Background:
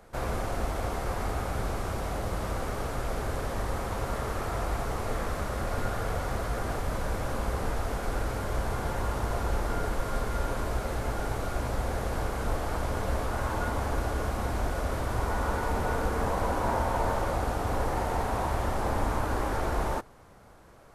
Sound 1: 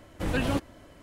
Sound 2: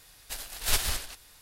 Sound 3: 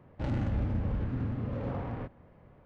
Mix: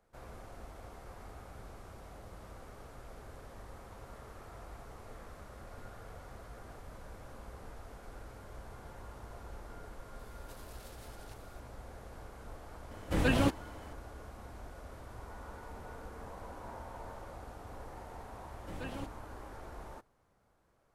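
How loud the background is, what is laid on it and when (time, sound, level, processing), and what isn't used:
background -18.5 dB
10.19 add 2 -12 dB + compressor 10:1, threshold -41 dBFS
12.91 add 1 -0.5 dB
18.47 add 1 -15.5 dB
not used: 3

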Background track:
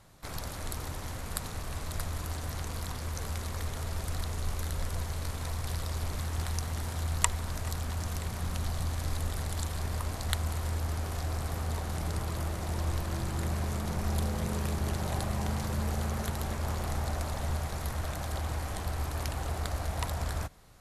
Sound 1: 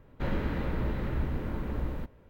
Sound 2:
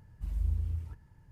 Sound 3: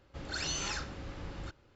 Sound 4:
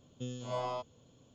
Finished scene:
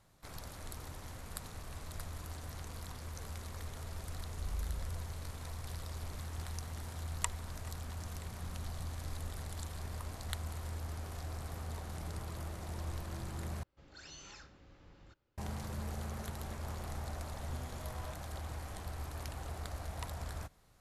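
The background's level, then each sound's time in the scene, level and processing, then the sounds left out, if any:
background track -9 dB
4.18 add 2 -7.5 dB
13.63 replace with 3 -16.5 dB
17.32 add 4 -9.5 dB + limiter -34 dBFS
not used: 1

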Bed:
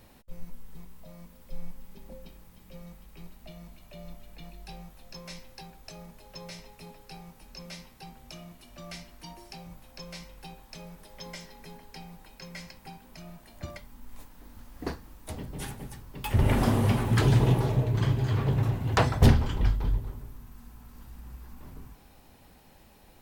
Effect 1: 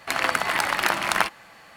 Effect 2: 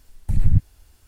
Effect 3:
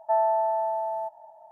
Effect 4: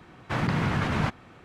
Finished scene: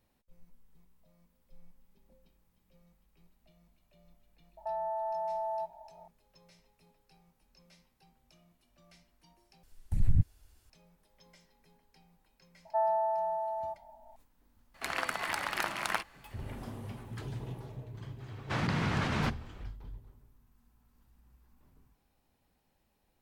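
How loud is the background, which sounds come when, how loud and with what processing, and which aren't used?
bed -19 dB
4.57 add 3 -3.5 dB + limiter -25 dBFS
9.63 replace with 2 -9 dB
12.65 add 3 -6 dB
14.74 add 1 -11 dB
18.2 add 4 -5.5 dB + bell 4900 Hz +5 dB 1.6 oct

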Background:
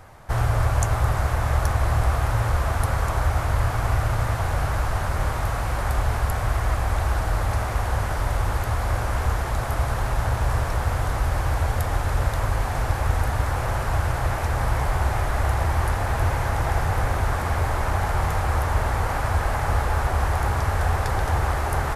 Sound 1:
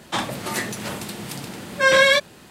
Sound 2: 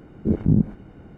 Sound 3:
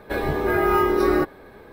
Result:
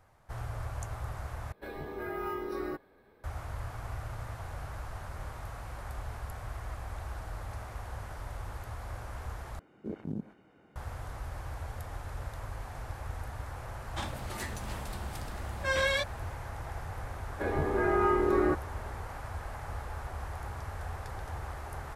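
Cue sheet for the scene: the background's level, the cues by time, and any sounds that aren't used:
background -17 dB
1.52 replace with 3 -17 dB
9.59 replace with 2 -7.5 dB + HPF 720 Hz 6 dB/oct
13.84 add 1 -14 dB
17.3 add 3 -7 dB + LPF 2100 Hz

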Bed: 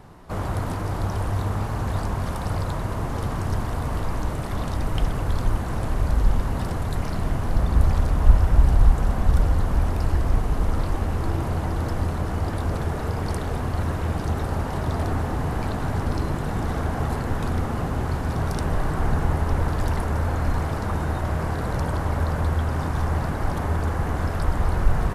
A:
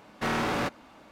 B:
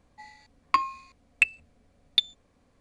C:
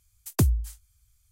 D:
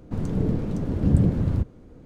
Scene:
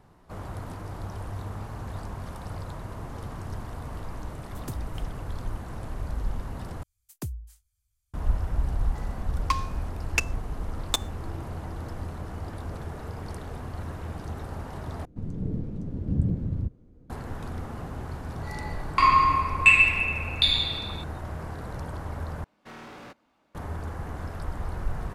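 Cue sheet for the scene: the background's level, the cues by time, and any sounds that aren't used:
bed -10.5 dB
4.29 add C -15 dB
6.83 replace with C -13 dB
8.76 add B -4 dB + noise-modulated delay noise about 3400 Hz, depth 0.031 ms
15.05 replace with D -15.5 dB + low shelf 380 Hz +10.5 dB
18.24 add B -2.5 dB + shoebox room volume 73 m³, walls hard, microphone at 1.1 m
22.44 replace with A -16 dB

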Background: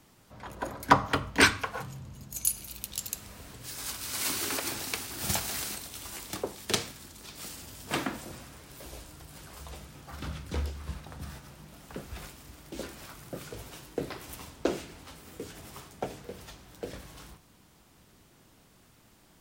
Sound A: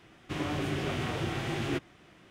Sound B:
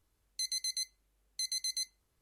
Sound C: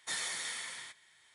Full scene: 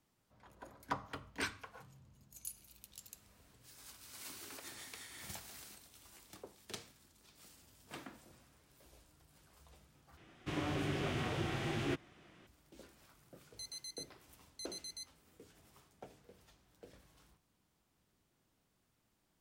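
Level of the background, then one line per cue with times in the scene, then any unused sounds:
background -18.5 dB
4.56 add C -11 dB + noise-modulated level
10.17 replace with A -5 dB
13.2 add B -12 dB

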